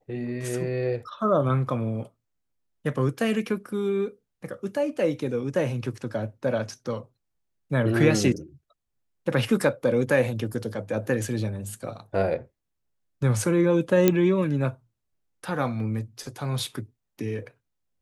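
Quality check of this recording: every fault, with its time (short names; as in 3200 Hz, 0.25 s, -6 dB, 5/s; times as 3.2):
14.08 pop -5 dBFS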